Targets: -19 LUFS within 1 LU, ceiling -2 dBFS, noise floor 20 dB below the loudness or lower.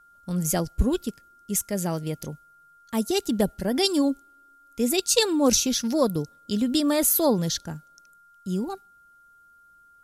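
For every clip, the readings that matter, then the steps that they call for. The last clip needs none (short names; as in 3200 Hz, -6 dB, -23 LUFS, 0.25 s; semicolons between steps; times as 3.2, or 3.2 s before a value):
steady tone 1400 Hz; tone level -53 dBFS; loudness -24.5 LUFS; peak -6.0 dBFS; loudness target -19.0 LUFS
-> notch 1400 Hz, Q 30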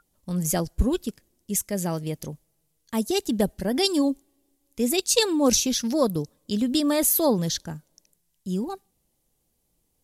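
steady tone none; loudness -24.5 LUFS; peak -6.0 dBFS; loudness target -19.0 LUFS
-> gain +5.5 dB; limiter -2 dBFS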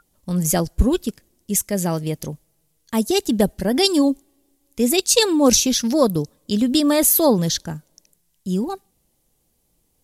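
loudness -19.0 LUFS; peak -2.0 dBFS; noise floor -67 dBFS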